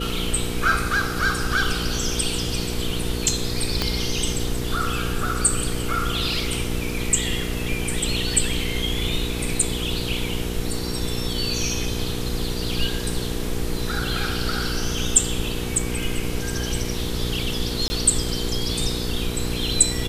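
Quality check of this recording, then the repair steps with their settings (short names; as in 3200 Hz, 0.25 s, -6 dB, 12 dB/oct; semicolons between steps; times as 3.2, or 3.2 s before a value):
hum 60 Hz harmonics 8 -29 dBFS
3.82 pop -7 dBFS
17.88–17.9 gap 20 ms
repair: de-click; de-hum 60 Hz, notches 8; interpolate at 17.88, 20 ms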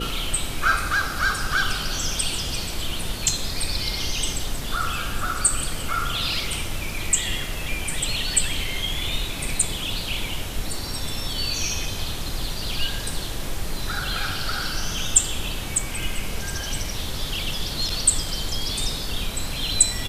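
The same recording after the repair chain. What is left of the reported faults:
3.82 pop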